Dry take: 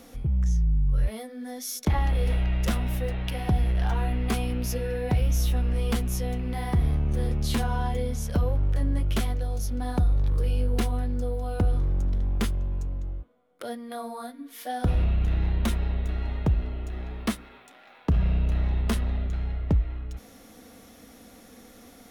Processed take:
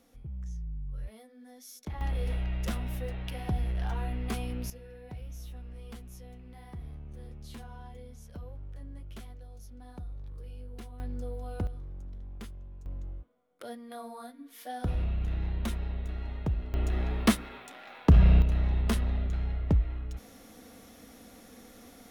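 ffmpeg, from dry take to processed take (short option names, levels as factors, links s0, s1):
-af "asetnsamples=n=441:p=0,asendcmd='2.01 volume volume -7dB;4.7 volume volume -19dB;11 volume volume -8.5dB;11.67 volume volume -17dB;12.86 volume volume -7dB;16.74 volume volume 4.5dB;18.42 volume volume -2dB',volume=0.178"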